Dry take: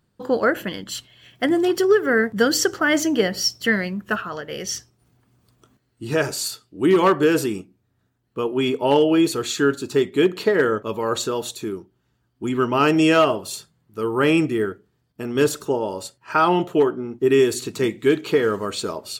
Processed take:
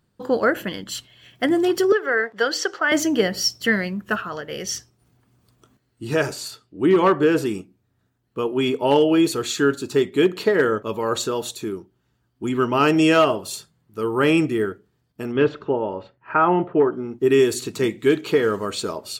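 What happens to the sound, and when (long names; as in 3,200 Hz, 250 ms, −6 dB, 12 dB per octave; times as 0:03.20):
0:01.92–0:02.92: three-way crossover with the lows and the highs turned down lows −24 dB, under 400 Hz, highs −16 dB, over 5,500 Hz
0:06.33–0:07.46: high-shelf EQ 4,600 Hz −10.5 dB
0:15.31–0:16.91: low-pass filter 3,200 Hz → 1,900 Hz 24 dB per octave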